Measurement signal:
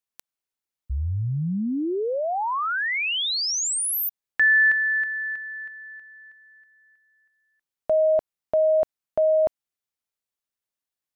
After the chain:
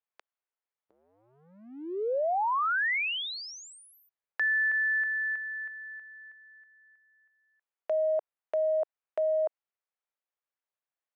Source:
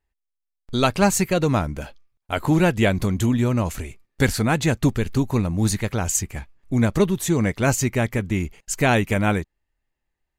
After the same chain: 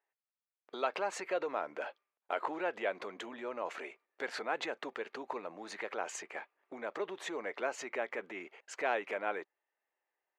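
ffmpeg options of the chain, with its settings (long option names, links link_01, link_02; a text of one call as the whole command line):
ffmpeg -i in.wav -af "lowpass=2100,acompressor=threshold=-25dB:ratio=6:attack=1.1:release=52:knee=1:detection=rms,highpass=frequency=440:width=0.5412,highpass=frequency=440:width=1.3066" out.wav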